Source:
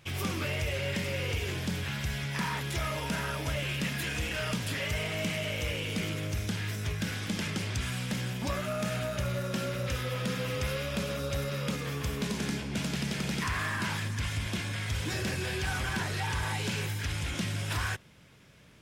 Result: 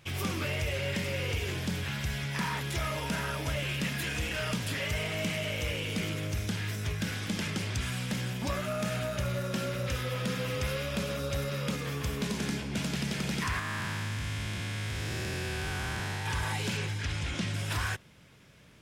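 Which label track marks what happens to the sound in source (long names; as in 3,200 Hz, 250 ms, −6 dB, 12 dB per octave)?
13.590000	16.260000	spectrum smeared in time width 307 ms
16.770000	17.540000	low-pass filter 7,400 Hz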